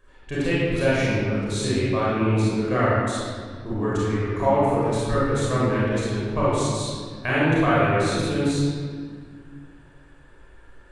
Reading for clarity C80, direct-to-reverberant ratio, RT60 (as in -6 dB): -1.0 dB, -9.0 dB, 1.9 s